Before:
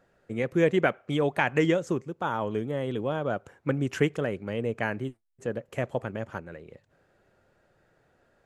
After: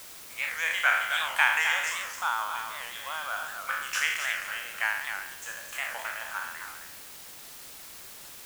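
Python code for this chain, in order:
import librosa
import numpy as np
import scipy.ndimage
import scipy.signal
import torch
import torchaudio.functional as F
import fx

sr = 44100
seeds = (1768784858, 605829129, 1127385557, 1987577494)

p1 = fx.spec_trails(x, sr, decay_s=0.85)
p2 = scipy.signal.sosfilt(scipy.signal.cheby2(4, 50, 390.0, 'highpass', fs=sr, output='sos'), p1)
p3 = fx.high_shelf(p2, sr, hz=6400.0, db=8.0)
p4 = p3 + 10.0 ** (-7.0 / 20.0) * np.pad(p3, (int(264 * sr / 1000.0), 0))[:len(p3)]
p5 = fx.quant_dither(p4, sr, seeds[0], bits=6, dither='triangular')
p6 = p4 + F.gain(torch.from_numpy(p5), -9.5).numpy()
y = fx.record_warp(p6, sr, rpm=78.0, depth_cents=160.0)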